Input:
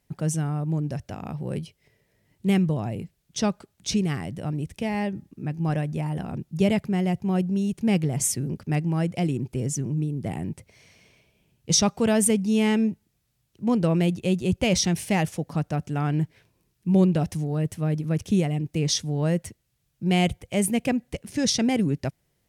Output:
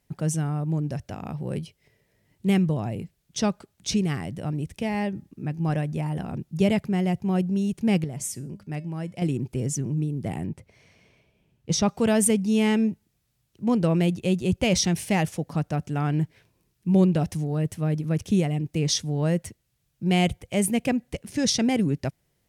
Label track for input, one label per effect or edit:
8.040000	9.220000	tuned comb filter 200 Hz, decay 0.34 s, harmonics odd
10.460000	11.890000	high-shelf EQ 3,500 Hz −9.5 dB

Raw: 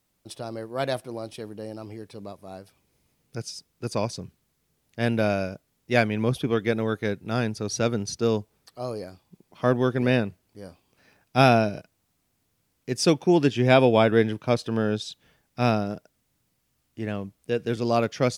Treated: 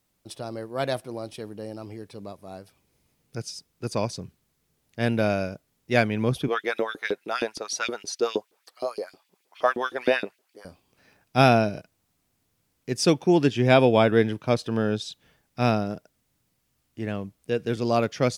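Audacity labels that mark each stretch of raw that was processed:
6.480000	10.650000	auto-filter high-pass saw up 6.4 Hz 300–3,600 Hz

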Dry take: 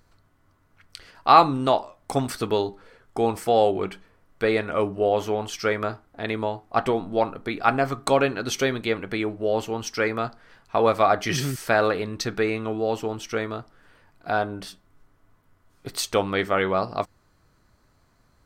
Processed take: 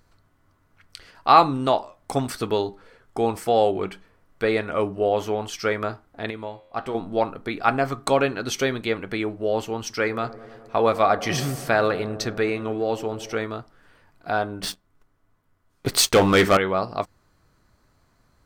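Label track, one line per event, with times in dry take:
6.300000	6.950000	tuned comb filter 89 Hz, decay 1 s
9.790000	13.440000	delay with a low-pass on its return 103 ms, feedback 79%, low-pass 890 Hz, level −16 dB
14.630000	16.570000	leveller curve on the samples passes 3

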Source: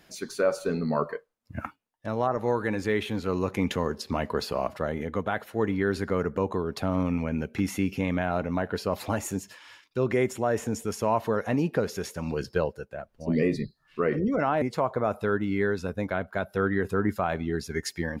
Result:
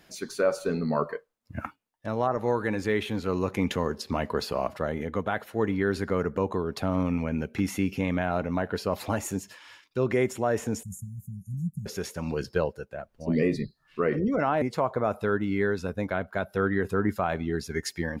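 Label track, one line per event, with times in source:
10.830000	11.860000	Chebyshev band-stop filter 190–7,100 Hz, order 5

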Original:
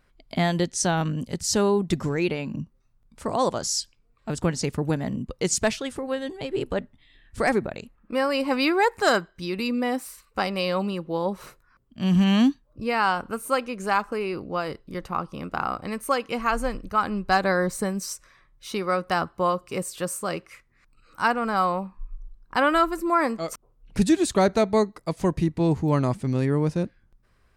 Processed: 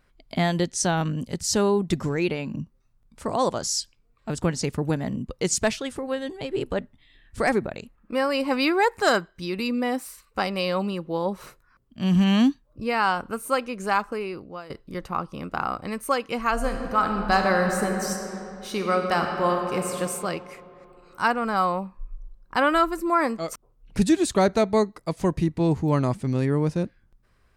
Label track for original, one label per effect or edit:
14.040000	14.700000	fade out linear, to −15.5 dB
16.520000	19.970000	thrown reverb, RT60 3 s, DRR 2.5 dB

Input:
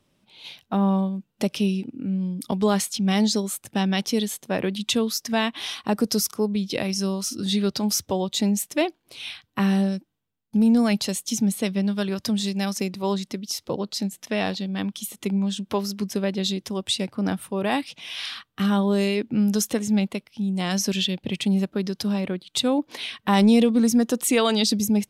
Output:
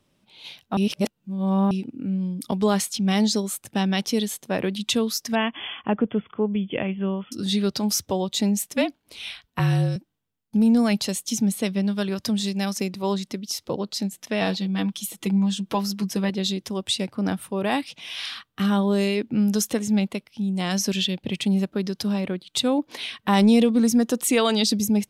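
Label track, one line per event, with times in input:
0.770000	1.710000	reverse
5.350000	7.320000	linear-phase brick-wall low-pass 3,500 Hz
8.760000	9.960000	frequency shifter −47 Hz
14.410000	16.300000	comb filter 6.1 ms, depth 68%

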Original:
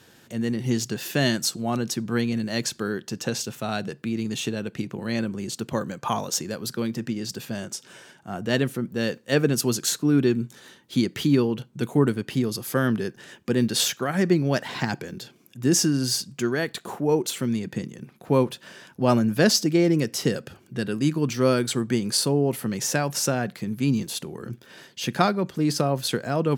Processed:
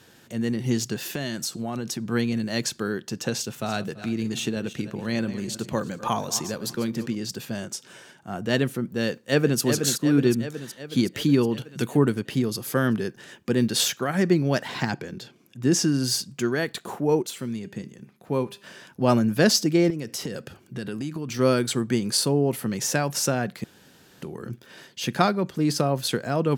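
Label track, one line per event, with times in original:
1.100000	2.090000	downward compressor, threshold −25 dBFS
3.390000	7.150000	feedback delay that plays each chunk backwards 168 ms, feedback 43%, level −13 dB
9.090000	9.600000	delay throw 370 ms, feedback 65%, level −6.5 dB
11.410000	12.130000	one half of a high-frequency compander encoder only
14.900000	15.880000	high-shelf EQ 8,800 Hz −10 dB
17.230000	18.640000	tuned comb filter 200 Hz, decay 0.51 s, mix 50%
19.900000	21.390000	downward compressor, threshold −27 dBFS
23.640000	24.220000	fill with room tone

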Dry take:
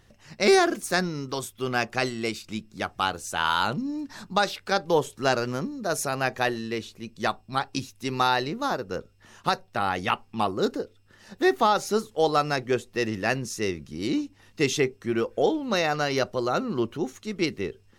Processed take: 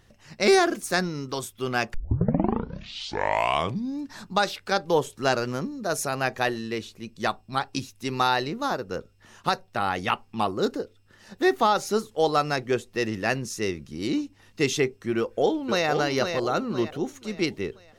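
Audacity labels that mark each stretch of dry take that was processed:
1.940000	1.940000	tape start 2.12 s
15.170000	15.880000	delay throw 510 ms, feedback 40%, level −6 dB

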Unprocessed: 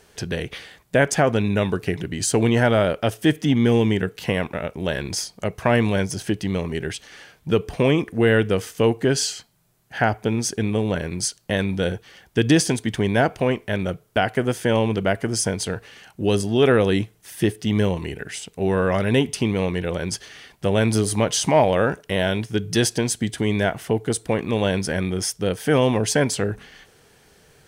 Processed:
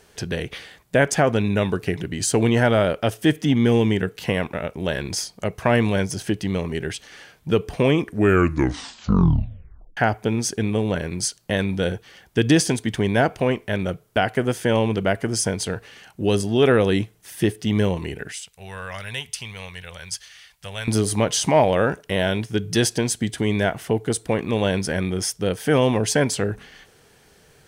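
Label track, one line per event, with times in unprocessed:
8.030000	8.030000	tape stop 1.94 s
18.320000	20.880000	guitar amp tone stack bass-middle-treble 10-0-10

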